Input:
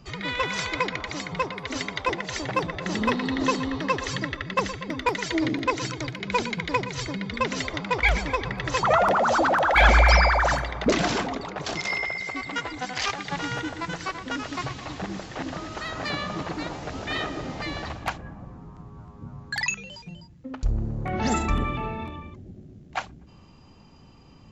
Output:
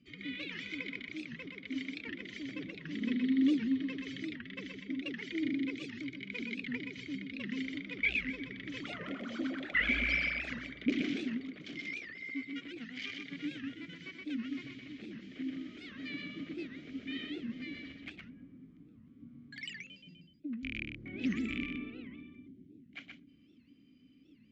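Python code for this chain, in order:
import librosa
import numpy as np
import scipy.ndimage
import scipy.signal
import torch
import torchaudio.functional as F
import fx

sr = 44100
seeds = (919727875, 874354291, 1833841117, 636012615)

p1 = fx.rattle_buzz(x, sr, strikes_db=-22.0, level_db=-12.0)
p2 = fx.vowel_filter(p1, sr, vowel='i')
p3 = fx.low_shelf(p2, sr, hz=130.0, db=5.5)
p4 = p3 + fx.echo_single(p3, sr, ms=125, db=-4.5, dry=0)
p5 = fx.record_warp(p4, sr, rpm=78.0, depth_cents=250.0)
y = p5 * librosa.db_to_amplitude(-1.5)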